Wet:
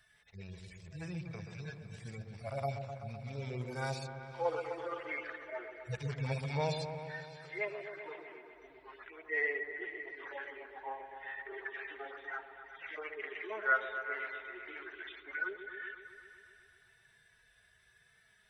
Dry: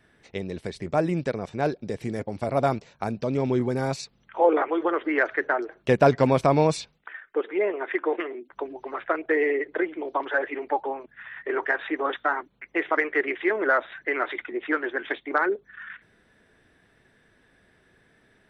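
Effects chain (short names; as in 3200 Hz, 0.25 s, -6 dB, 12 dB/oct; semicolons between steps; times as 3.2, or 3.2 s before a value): median-filter separation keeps harmonic; passive tone stack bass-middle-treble 10-0-10; repeats that get brighter 0.127 s, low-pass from 750 Hz, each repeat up 1 oct, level -6 dB; gain +3.5 dB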